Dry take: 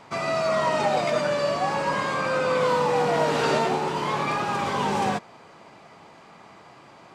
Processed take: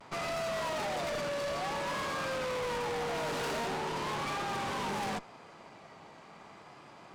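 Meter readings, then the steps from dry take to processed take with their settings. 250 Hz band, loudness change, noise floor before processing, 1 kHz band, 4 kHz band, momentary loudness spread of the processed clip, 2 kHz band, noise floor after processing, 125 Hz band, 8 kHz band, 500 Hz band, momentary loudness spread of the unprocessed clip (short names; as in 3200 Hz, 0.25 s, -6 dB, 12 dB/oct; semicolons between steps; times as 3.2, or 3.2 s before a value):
-10.5 dB, -10.5 dB, -50 dBFS, -11.0 dB, -6.5 dB, 19 LU, -8.5 dB, -54 dBFS, -10.5 dB, -5.0 dB, -11.5 dB, 4 LU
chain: vibrato 0.62 Hz 41 cents; tube stage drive 33 dB, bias 0.7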